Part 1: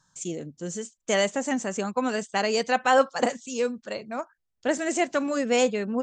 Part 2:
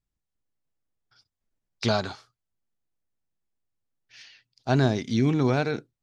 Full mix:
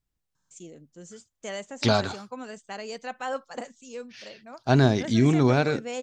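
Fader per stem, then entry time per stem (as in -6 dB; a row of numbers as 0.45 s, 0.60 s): -12.0 dB, +2.5 dB; 0.35 s, 0.00 s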